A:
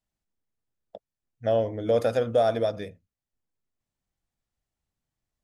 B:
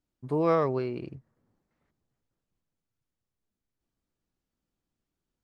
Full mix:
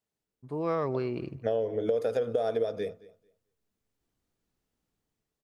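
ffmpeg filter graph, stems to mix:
-filter_complex "[0:a]highpass=110,equalizer=f=440:t=o:w=0.24:g=14,acompressor=threshold=-26dB:ratio=1.5,volume=-1dB,asplit=2[a][b];[b]volume=-21.5dB[c];[1:a]dynaudnorm=f=140:g=9:m=11dB,adelay=200,volume=-8.5dB,asplit=2[d][e];[e]volume=-24dB[f];[c][f]amix=inputs=2:normalize=0,aecho=0:1:222|444|666:1|0.18|0.0324[g];[a][d][g]amix=inputs=3:normalize=0,acompressor=threshold=-24dB:ratio=6"

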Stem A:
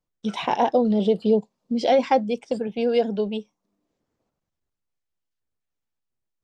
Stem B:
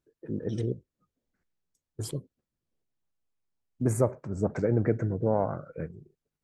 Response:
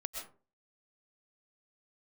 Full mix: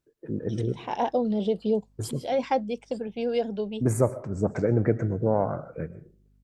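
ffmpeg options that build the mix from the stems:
-filter_complex "[0:a]aeval=exprs='val(0)+0.00178*(sin(2*PI*50*n/s)+sin(2*PI*2*50*n/s)/2+sin(2*PI*3*50*n/s)/3+sin(2*PI*4*50*n/s)/4+sin(2*PI*5*50*n/s)/5)':c=same,adelay=400,volume=-5.5dB[a];[1:a]volume=0.5dB,asplit=3[b][c][d];[c]volume=-10.5dB[e];[d]apad=whole_len=301559[f];[a][f]sidechaincompress=threshold=-45dB:ratio=3:attack=21:release=186[g];[2:a]atrim=start_sample=2205[h];[e][h]afir=irnorm=-1:irlink=0[i];[g][b][i]amix=inputs=3:normalize=0"

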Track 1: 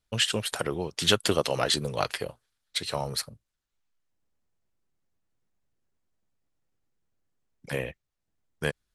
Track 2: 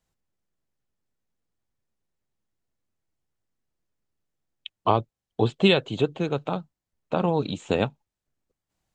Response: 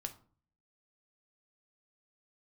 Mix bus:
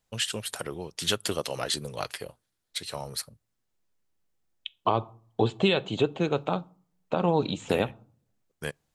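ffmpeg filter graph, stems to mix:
-filter_complex "[0:a]highshelf=f=6.8k:g=7,volume=-6dB,asplit=2[a][b];[b]volume=-23.5dB[c];[1:a]lowshelf=f=200:g=-5,volume=-1dB,asplit=2[d][e];[e]volume=-7dB[f];[2:a]atrim=start_sample=2205[g];[c][f]amix=inputs=2:normalize=0[h];[h][g]afir=irnorm=-1:irlink=0[i];[a][d][i]amix=inputs=3:normalize=0,alimiter=limit=-11.5dB:level=0:latency=1:release=177"

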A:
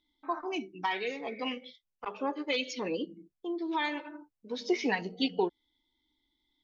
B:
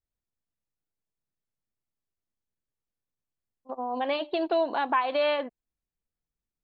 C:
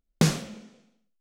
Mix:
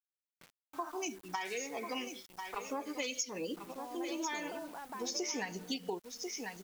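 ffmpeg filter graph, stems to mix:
-filter_complex "[0:a]equalizer=f=67:t=o:w=1.9:g=-7.5,aexciter=amount=7.9:drive=10:freq=6k,adelay=500,volume=-1.5dB,asplit=2[a][b];[b]volume=-11dB[c];[1:a]volume=-6.5dB[d];[2:a]aderivative,flanger=delay=15.5:depth=7.3:speed=2.2,adelay=200,volume=-12.5dB,asplit=2[e][f];[f]volume=-4.5dB[g];[d][e]amix=inputs=2:normalize=0,lowpass=f=2.5k:w=0.5412,lowpass=f=2.5k:w=1.3066,acompressor=threshold=-43dB:ratio=6,volume=0dB[h];[c][g]amix=inputs=2:normalize=0,aecho=0:1:1042:1[i];[a][h][i]amix=inputs=3:normalize=0,asubboost=boost=2.5:cutoff=160,acrusher=bits=8:mix=0:aa=0.000001,acompressor=threshold=-34dB:ratio=6"

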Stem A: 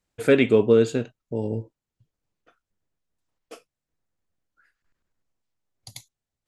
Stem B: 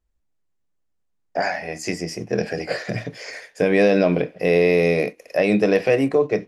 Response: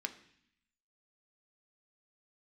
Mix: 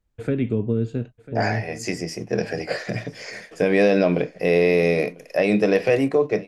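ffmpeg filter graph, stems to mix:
-filter_complex "[0:a]aemphasis=mode=reproduction:type=bsi,acrossover=split=290[a][b];[b]acompressor=threshold=-23dB:ratio=10[c];[a][c]amix=inputs=2:normalize=0,volume=-4.5dB,asplit=2[d][e];[e]volume=-17.5dB[f];[1:a]volume=-1dB,asplit=2[g][h];[h]volume=-23dB[i];[f][i]amix=inputs=2:normalize=0,aecho=0:1:996:1[j];[d][g][j]amix=inputs=3:normalize=0"

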